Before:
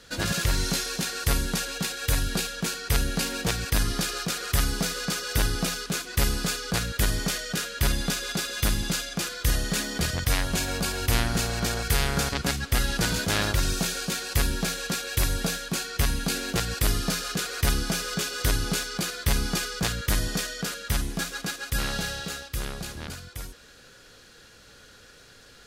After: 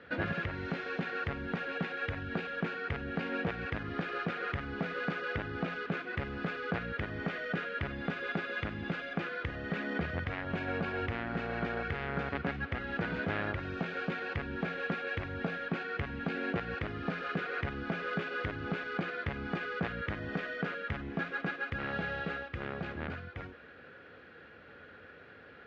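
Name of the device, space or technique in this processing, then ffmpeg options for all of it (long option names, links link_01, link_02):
bass amplifier: -af "acompressor=threshold=-29dB:ratio=6,highpass=frequency=82:width=0.5412,highpass=frequency=82:width=1.3066,equalizer=frequency=120:width_type=q:width=4:gain=-9,equalizer=frequency=190:width_type=q:width=4:gain=-3,equalizer=frequency=1000:width_type=q:width=4:gain=-4,lowpass=frequency=2300:width=0.5412,lowpass=frequency=2300:width=1.3066,volume=2dB"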